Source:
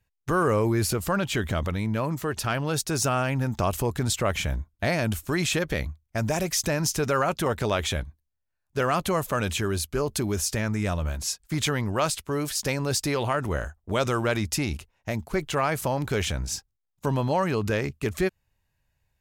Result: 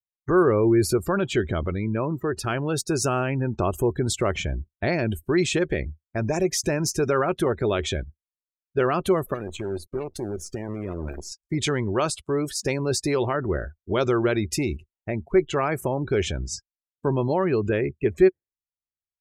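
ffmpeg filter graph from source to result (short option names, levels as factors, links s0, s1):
-filter_complex "[0:a]asettb=1/sr,asplit=3[s0][s1][s2];[s0]atrim=end=9.344[s3];[s1]atrim=start=9.34:end=11.32,asetpts=PTS-STARTPTS,afade=t=in:d=0.004:c=qsin,afade=t=out:st=1.976:d=0.004:c=qsin,acompressor=threshold=0.0282:ratio=4:attack=3.2:release=140:knee=1:detection=peak,acrusher=bits=6:dc=4:mix=0:aa=0.000001[s4];[s2]atrim=start=11.316[s5];[s3][s4]acrossfade=d=0.004:c1=hsin:c2=qsin[s6];[s6][s5]acrossfade=d=0.004:c1=qsin:c2=hsin,adynamicequalizer=threshold=0.0141:dfrequency=950:dqfactor=1.8:tfrequency=950:tqfactor=1.8:attack=5:release=100:ratio=0.375:range=2.5:mode=cutabove:tftype=bell,afftdn=nr=35:nf=-36,equalizer=f=370:t=o:w=0.39:g=10.5"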